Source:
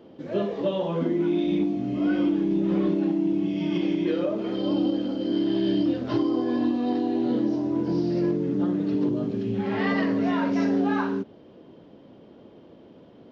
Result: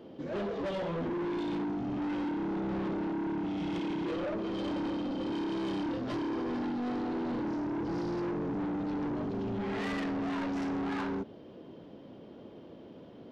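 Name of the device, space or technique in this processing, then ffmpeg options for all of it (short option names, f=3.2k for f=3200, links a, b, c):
saturation between pre-emphasis and de-emphasis: -af "highshelf=f=4.5k:g=9,asoftclip=type=tanh:threshold=-31.5dB,highshelf=f=4.5k:g=-9"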